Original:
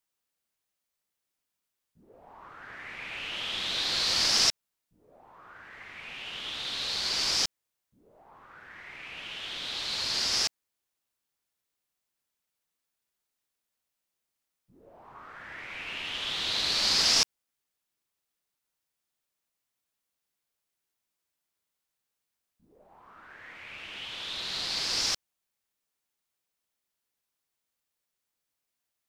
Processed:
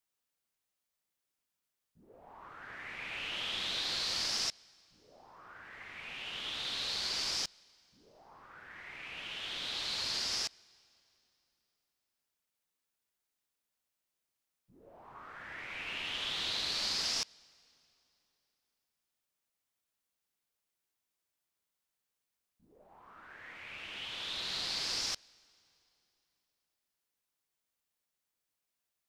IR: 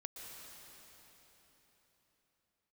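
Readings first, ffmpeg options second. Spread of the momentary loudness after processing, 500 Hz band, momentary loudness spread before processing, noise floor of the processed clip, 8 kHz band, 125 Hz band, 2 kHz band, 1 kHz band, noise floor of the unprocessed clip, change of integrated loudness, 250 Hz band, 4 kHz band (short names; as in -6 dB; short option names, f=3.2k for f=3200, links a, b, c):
18 LU, -6.0 dB, 21 LU, under -85 dBFS, -8.5 dB, -6.0 dB, -5.0 dB, -6.0 dB, -85 dBFS, -7.5 dB, -6.5 dB, -7.0 dB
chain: -filter_complex "[0:a]acompressor=threshold=-30dB:ratio=4,asplit=2[a][b];[1:a]atrim=start_sample=2205,asetrate=57330,aresample=44100[c];[b][c]afir=irnorm=-1:irlink=0,volume=-17.5dB[d];[a][d]amix=inputs=2:normalize=0,volume=-3dB"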